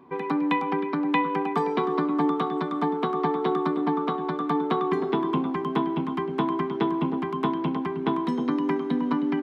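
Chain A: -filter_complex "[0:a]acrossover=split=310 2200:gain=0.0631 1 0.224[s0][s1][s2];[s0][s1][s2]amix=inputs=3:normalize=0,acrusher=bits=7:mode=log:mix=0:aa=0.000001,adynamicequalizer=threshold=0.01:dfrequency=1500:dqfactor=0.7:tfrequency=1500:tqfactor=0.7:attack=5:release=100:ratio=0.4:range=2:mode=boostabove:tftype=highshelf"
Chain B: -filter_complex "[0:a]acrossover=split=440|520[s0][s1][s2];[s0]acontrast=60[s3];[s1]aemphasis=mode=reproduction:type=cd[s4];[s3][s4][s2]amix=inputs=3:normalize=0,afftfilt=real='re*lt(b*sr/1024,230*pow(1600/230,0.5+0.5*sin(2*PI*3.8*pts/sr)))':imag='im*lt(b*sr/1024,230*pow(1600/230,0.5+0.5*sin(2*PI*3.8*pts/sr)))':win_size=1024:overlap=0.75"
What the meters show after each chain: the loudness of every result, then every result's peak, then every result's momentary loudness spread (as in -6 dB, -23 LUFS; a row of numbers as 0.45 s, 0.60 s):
-29.0 LUFS, -23.5 LUFS; -11.5 dBFS, -8.5 dBFS; 5 LU, 4 LU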